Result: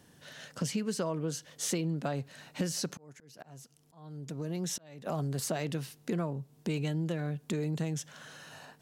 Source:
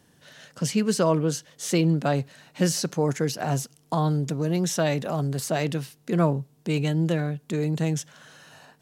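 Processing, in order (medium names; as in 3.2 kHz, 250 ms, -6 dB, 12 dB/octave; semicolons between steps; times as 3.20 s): compression 6:1, threshold -30 dBFS, peak gain reduction 14 dB; 2.92–5.07 s: slow attack 796 ms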